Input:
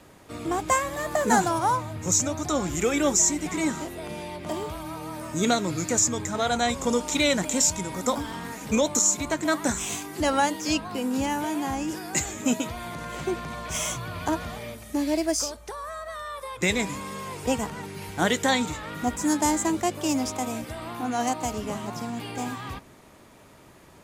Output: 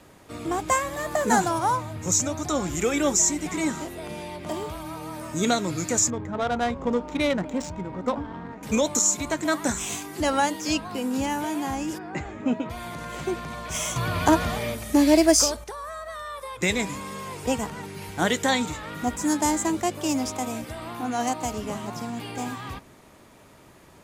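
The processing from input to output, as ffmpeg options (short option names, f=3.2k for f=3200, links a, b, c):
-filter_complex "[0:a]asettb=1/sr,asplit=3[a][b][c];[a]atrim=end=6.104[d];[b]atrim=start=6.1:end=8.63,asetpts=PTS-STARTPTS,afade=t=in:d=0.004:c=qsin,afade=t=out:st=2.526:d=0.004:c=qsin,adynamicsmooth=sensitivity=1:basefreq=1.1k[e];[c]atrim=start=8.626[f];[d][e]acrossfade=d=0.004:c1=hsin:c2=qsin[g];[g][f]acrossfade=d=0.004:c1=qsin:c2=hsin,asplit=3[h][i][j];[h]afade=t=out:st=11.97:d=0.02[k];[i]lowpass=1.8k,afade=t=in:st=11.97:d=0.02,afade=t=out:st=12.69:d=0.02[l];[j]afade=t=in:st=12.69:d=0.02[m];[k][l][m]amix=inputs=3:normalize=0,asplit=3[n][o][p];[n]atrim=end=13.962[q];[o]atrim=start=13.958:end=15.642,asetpts=PTS-STARTPTS,volume=8dB[r];[p]atrim=start=15.638[s];[q][r]acrossfade=d=0.004:c1=hsin:c2=hsin[t];[t][s]acrossfade=d=0.004:c1=hsin:c2=hsin"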